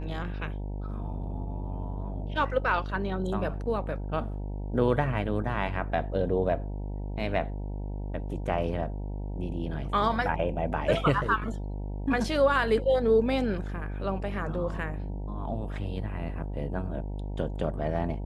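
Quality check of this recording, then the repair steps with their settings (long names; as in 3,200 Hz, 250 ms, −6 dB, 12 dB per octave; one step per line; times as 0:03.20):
mains buzz 50 Hz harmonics 19 −34 dBFS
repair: hum removal 50 Hz, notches 19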